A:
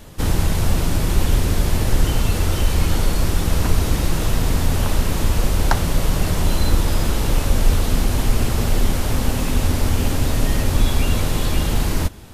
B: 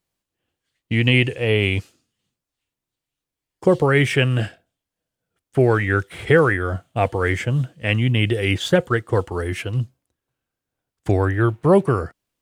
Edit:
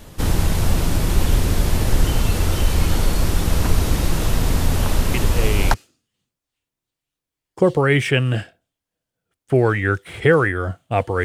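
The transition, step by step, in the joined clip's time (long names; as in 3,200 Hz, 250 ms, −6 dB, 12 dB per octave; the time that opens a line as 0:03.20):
A
0:05.14: mix in B from 0:01.19 0.60 s −6.5 dB
0:05.74: continue with B from 0:01.79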